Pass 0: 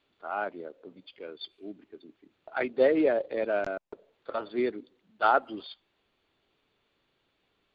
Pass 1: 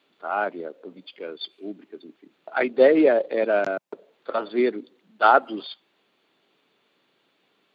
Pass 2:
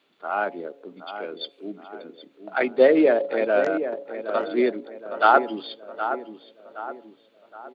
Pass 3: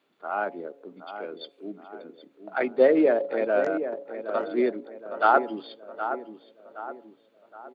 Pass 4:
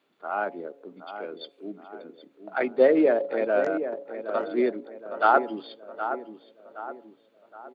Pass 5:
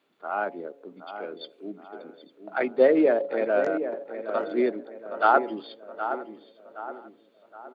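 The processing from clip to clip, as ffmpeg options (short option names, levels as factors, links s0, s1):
-af "highpass=f=160:w=0.5412,highpass=f=160:w=1.3066,volume=2.24"
-filter_complex "[0:a]bandreject=f=140.1:t=h:w=4,bandreject=f=280.2:t=h:w=4,bandreject=f=420.3:t=h:w=4,bandreject=f=560.4:t=h:w=4,bandreject=f=700.5:t=h:w=4,bandreject=f=840.6:t=h:w=4,bandreject=f=980.7:t=h:w=4,asplit=2[s0][s1];[s1]adelay=769,lowpass=f=2000:p=1,volume=0.335,asplit=2[s2][s3];[s3]adelay=769,lowpass=f=2000:p=1,volume=0.46,asplit=2[s4][s5];[s5]adelay=769,lowpass=f=2000:p=1,volume=0.46,asplit=2[s6][s7];[s7]adelay=769,lowpass=f=2000:p=1,volume=0.46,asplit=2[s8][s9];[s9]adelay=769,lowpass=f=2000:p=1,volume=0.46[s10];[s2][s4][s6][s8][s10]amix=inputs=5:normalize=0[s11];[s0][s11]amix=inputs=2:normalize=0"
-af "equalizer=f=3400:t=o:w=1.4:g=-6,volume=0.75"
-af anull
-af "aecho=1:1:852|1704:0.0794|0.0278"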